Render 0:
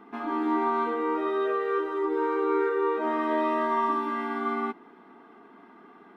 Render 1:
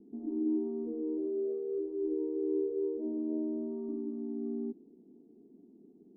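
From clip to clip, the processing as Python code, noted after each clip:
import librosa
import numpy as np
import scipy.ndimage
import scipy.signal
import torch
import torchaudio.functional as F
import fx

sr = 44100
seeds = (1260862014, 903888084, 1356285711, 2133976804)

y = scipy.signal.sosfilt(scipy.signal.cheby2(4, 60, 1300.0, 'lowpass', fs=sr, output='sos'), x)
y = y * librosa.db_to_amplitude(-2.0)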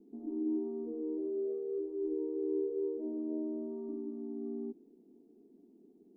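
y = fx.peak_eq(x, sr, hz=100.0, db=-12.5, octaves=1.8)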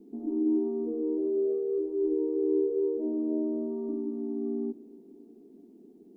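y = fx.echo_feedback(x, sr, ms=301, feedback_pct=54, wet_db=-23.0)
y = y * librosa.db_to_amplitude(7.5)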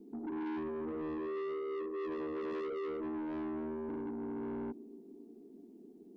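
y = 10.0 ** (-35.0 / 20.0) * np.tanh(x / 10.0 ** (-35.0 / 20.0))
y = y * librosa.db_to_amplitude(-1.5)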